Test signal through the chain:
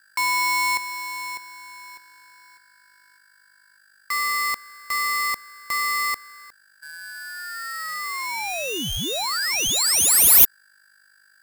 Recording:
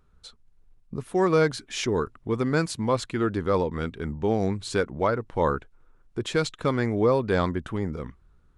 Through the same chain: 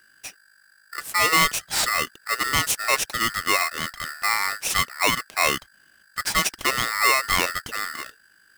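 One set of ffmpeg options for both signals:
ffmpeg -i in.wav -af "aemphasis=mode=production:type=bsi,aeval=exprs='val(0)+0.001*(sin(2*PI*50*n/s)+sin(2*PI*2*50*n/s)/2+sin(2*PI*3*50*n/s)/3+sin(2*PI*4*50*n/s)/4+sin(2*PI*5*50*n/s)/5)':channel_layout=same,aeval=exprs='val(0)*sgn(sin(2*PI*1600*n/s))':channel_layout=same,volume=3.5dB" out.wav

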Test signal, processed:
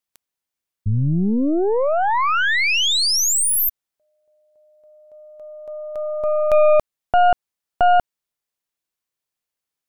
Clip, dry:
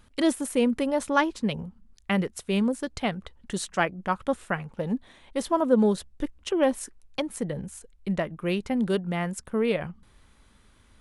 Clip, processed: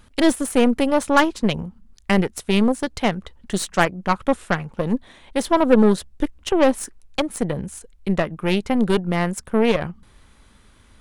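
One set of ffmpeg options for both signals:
ffmpeg -i in.wav -af "aeval=exprs='0.398*(cos(1*acos(clip(val(0)/0.398,-1,1)))-cos(1*PI/2))+0.0355*(cos(8*acos(clip(val(0)/0.398,-1,1)))-cos(8*PI/2))':channel_layout=same,volume=6dB" out.wav

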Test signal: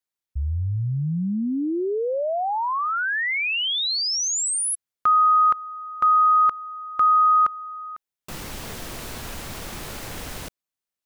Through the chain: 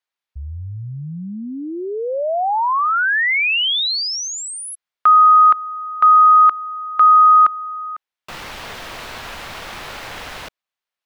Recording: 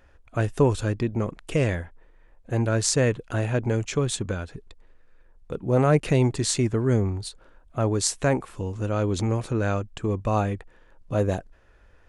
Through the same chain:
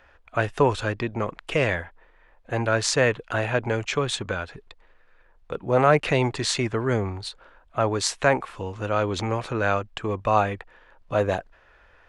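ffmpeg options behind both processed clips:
ffmpeg -i in.wav -filter_complex "[0:a]acrossover=split=570 4500:gain=0.251 1 0.2[link_01][link_02][link_03];[link_01][link_02][link_03]amix=inputs=3:normalize=0,volume=7.5dB" out.wav

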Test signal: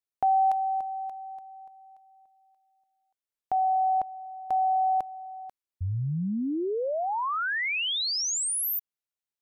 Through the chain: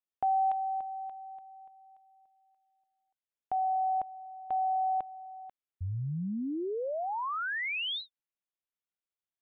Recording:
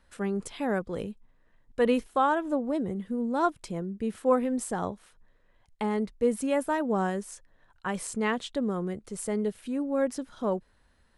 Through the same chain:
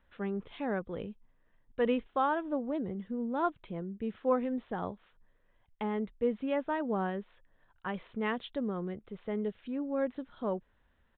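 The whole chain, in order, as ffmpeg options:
ffmpeg -i in.wav -af "aresample=8000,aresample=44100,volume=-5dB" out.wav

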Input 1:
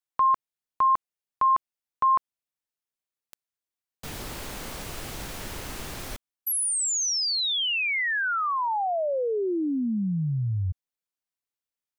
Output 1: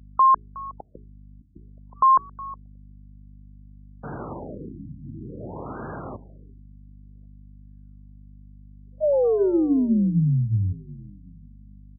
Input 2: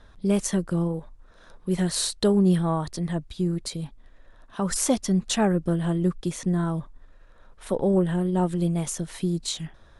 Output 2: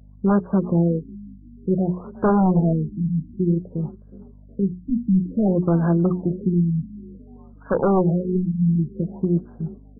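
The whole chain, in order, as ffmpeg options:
ffmpeg -i in.wav -filter_complex "[0:a]afftdn=noise_reduction=17:noise_floor=-45,highpass=frequency=100:width=0.5412,highpass=frequency=100:width=1.3066,bandreject=frequency=60:width_type=h:width=6,bandreject=frequency=120:width_type=h:width=6,bandreject=frequency=180:width_type=h:width=6,bandreject=frequency=240:width_type=h:width=6,bandreject=frequency=300:width_type=h:width=6,bandreject=frequency=360:width_type=h:width=6,bandreject=frequency=420:width_type=h:width=6,aeval=exprs='val(0)+0.00251*(sin(2*PI*50*n/s)+sin(2*PI*2*50*n/s)/2+sin(2*PI*3*50*n/s)/3+sin(2*PI*4*50*n/s)/4+sin(2*PI*5*50*n/s)/5)':channel_layout=same,aeval=exprs='0.119*(abs(mod(val(0)/0.119+3,4)-2)-1)':channel_layout=same,asplit=2[link_01][link_02];[link_02]asplit=3[link_03][link_04][link_05];[link_03]adelay=365,afreqshift=34,volume=-19.5dB[link_06];[link_04]adelay=730,afreqshift=68,volume=-28.9dB[link_07];[link_05]adelay=1095,afreqshift=102,volume=-38.2dB[link_08];[link_06][link_07][link_08]amix=inputs=3:normalize=0[link_09];[link_01][link_09]amix=inputs=2:normalize=0,afftfilt=real='re*lt(b*sr/1024,290*pow(1700/290,0.5+0.5*sin(2*PI*0.55*pts/sr)))':imag='im*lt(b*sr/1024,290*pow(1700/290,0.5+0.5*sin(2*PI*0.55*pts/sr)))':win_size=1024:overlap=0.75,volume=7dB" out.wav

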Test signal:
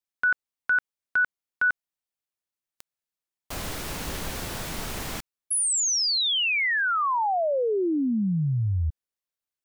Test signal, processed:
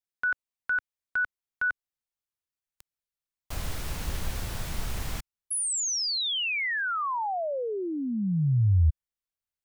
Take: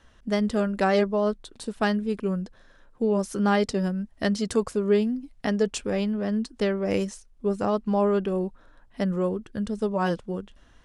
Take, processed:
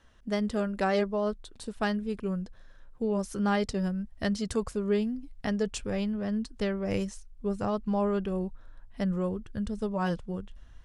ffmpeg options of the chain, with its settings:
ffmpeg -i in.wav -af "asubboost=boost=3.5:cutoff=140,volume=-4.5dB" out.wav

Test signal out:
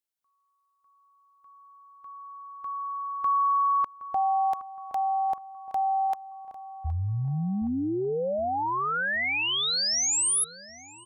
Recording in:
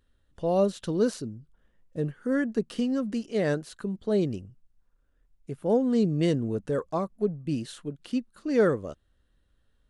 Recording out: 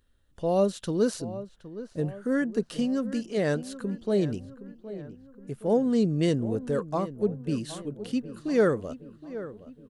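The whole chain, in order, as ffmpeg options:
ffmpeg -i in.wav -filter_complex "[0:a]highshelf=frequency=6600:gain=5,asplit=2[link_01][link_02];[link_02]adelay=768,lowpass=frequency=2000:poles=1,volume=-14dB,asplit=2[link_03][link_04];[link_04]adelay=768,lowpass=frequency=2000:poles=1,volume=0.54,asplit=2[link_05][link_06];[link_06]adelay=768,lowpass=frequency=2000:poles=1,volume=0.54,asplit=2[link_07][link_08];[link_08]adelay=768,lowpass=frequency=2000:poles=1,volume=0.54,asplit=2[link_09][link_10];[link_10]adelay=768,lowpass=frequency=2000:poles=1,volume=0.54[link_11];[link_01][link_03][link_05][link_07][link_09][link_11]amix=inputs=6:normalize=0" out.wav

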